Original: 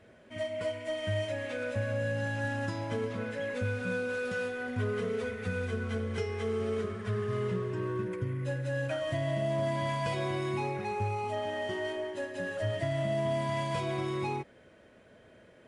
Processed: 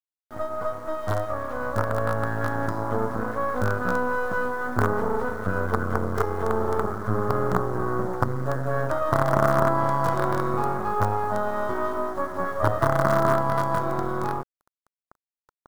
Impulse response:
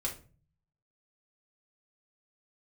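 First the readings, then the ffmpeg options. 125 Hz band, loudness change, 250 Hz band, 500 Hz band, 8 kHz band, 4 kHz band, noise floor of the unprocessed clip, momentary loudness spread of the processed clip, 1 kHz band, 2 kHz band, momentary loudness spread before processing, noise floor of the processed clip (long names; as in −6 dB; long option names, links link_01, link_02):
+5.5 dB, +8.0 dB, +7.0 dB, +6.5 dB, +5.5 dB, −3.5 dB, −58 dBFS, 7 LU, +13.5 dB, +6.0 dB, 4 LU, below −85 dBFS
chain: -af "acrusher=bits=5:dc=4:mix=0:aa=0.000001,dynaudnorm=framelen=240:gausssize=17:maxgain=3dB,highshelf=frequency=1800:width_type=q:width=3:gain=-12,volume=7.5dB"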